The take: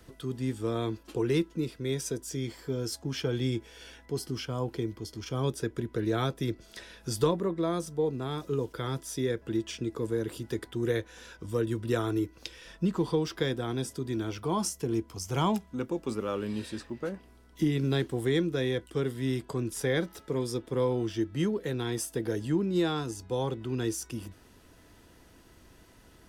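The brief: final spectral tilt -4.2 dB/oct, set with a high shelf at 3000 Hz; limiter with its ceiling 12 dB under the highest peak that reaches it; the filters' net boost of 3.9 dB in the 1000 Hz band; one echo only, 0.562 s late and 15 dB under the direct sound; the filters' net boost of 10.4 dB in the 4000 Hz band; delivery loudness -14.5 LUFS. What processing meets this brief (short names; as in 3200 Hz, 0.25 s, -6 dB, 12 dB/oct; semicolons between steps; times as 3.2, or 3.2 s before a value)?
bell 1000 Hz +3.5 dB; high shelf 3000 Hz +6.5 dB; bell 4000 Hz +8 dB; limiter -19 dBFS; echo 0.562 s -15 dB; gain +16.5 dB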